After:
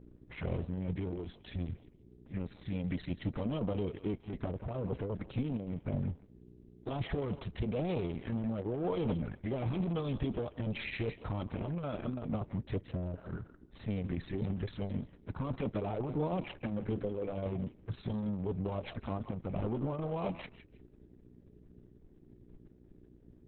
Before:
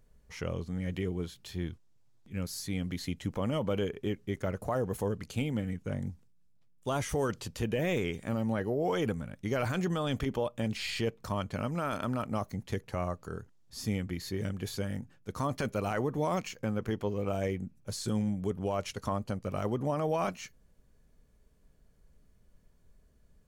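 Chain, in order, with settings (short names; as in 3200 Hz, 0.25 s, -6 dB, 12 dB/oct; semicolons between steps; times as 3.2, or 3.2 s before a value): 12.91–13.3 spectral repair 710–2800 Hz both; 16.3–17.46 notches 50/100/150/200/250/300/350 Hz; sample leveller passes 2; envelope flanger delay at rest 9.6 ms, full sweep at -25.5 dBFS; buzz 60 Hz, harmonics 7, -54 dBFS -2 dB/oct; in parallel at -4 dB: soft clip -37 dBFS, distortion -7 dB; on the sum: air absorption 280 m; thinning echo 0.166 s, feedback 17%, high-pass 990 Hz, level -10.5 dB; gain -4.5 dB; Opus 6 kbps 48000 Hz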